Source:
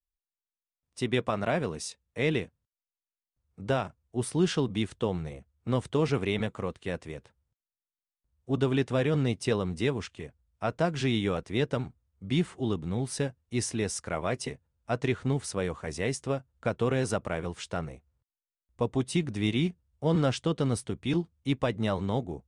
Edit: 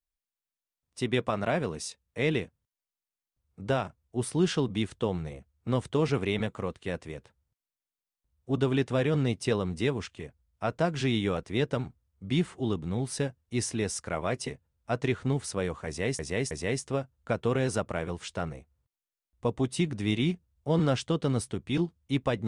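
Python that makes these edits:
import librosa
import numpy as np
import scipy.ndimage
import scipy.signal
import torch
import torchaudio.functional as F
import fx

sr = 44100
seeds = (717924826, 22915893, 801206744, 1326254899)

y = fx.edit(x, sr, fx.repeat(start_s=15.87, length_s=0.32, count=3), tone=tone)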